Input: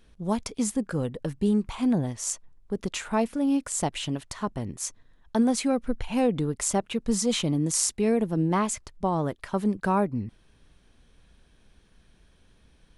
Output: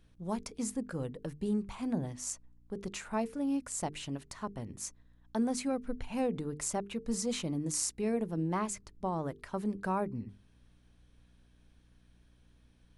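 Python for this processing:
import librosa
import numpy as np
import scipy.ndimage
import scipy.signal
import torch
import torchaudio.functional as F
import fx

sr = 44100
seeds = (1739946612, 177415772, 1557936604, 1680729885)

y = fx.hum_notches(x, sr, base_hz=50, count=9)
y = fx.add_hum(y, sr, base_hz=60, snr_db=28)
y = fx.dynamic_eq(y, sr, hz=3300.0, q=3.7, threshold_db=-54.0, ratio=4.0, max_db=-5)
y = y * librosa.db_to_amplitude(-8.0)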